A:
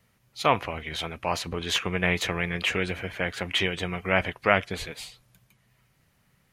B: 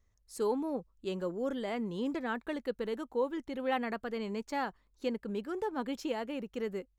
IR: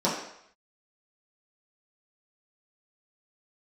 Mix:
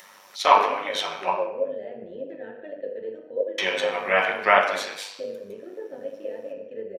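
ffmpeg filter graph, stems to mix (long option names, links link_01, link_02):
-filter_complex "[0:a]highpass=890,volume=-0.5dB,asplit=3[link_01][link_02][link_03];[link_01]atrim=end=1.3,asetpts=PTS-STARTPTS,afade=type=out:start_time=1.296:duration=0.004:curve=hsin[link_04];[link_02]atrim=start=1.3:end=3.58,asetpts=PTS-STARTPTS,volume=0[link_05];[link_03]atrim=start=3.58,asetpts=PTS-STARTPTS,afade=type=in:duration=0.004:curve=hsin[link_06];[link_04][link_05][link_06]concat=n=3:v=0:a=1,asplit=2[link_07][link_08];[link_08]volume=-3dB[link_09];[1:a]asplit=3[link_10][link_11][link_12];[link_10]bandpass=frequency=530:width_type=q:width=8,volume=0dB[link_13];[link_11]bandpass=frequency=1840:width_type=q:width=8,volume=-6dB[link_14];[link_12]bandpass=frequency=2480:width_type=q:width=8,volume=-9dB[link_15];[link_13][link_14][link_15]amix=inputs=3:normalize=0,adelay=150,volume=-2dB,asplit=2[link_16][link_17];[link_17]volume=-3.5dB[link_18];[2:a]atrim=start_sample=2205[link_19];[link_09][link_18]amix=inputs=2:normalize=0[link_20];[link_20][link_19]afir=irnorm=-1:irlink=0[link_21];[link_07][link_16][link_21]amix=inputs=3:normalize=0,acompressor=mode=upward:threshold=-34dB:ratio=2.5,tremolo=f=100:d=0.519"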